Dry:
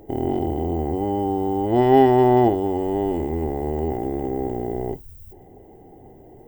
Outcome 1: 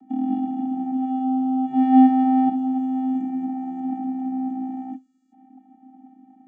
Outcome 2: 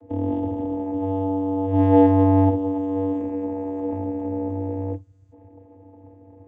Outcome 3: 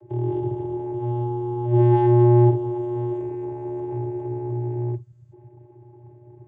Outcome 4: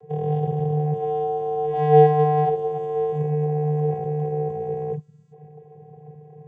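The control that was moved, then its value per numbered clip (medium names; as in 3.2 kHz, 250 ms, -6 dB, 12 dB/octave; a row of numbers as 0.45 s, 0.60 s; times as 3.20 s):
vocoder, frequency: 260 Hz, 96 Hz, 120 Hz, 150 Hz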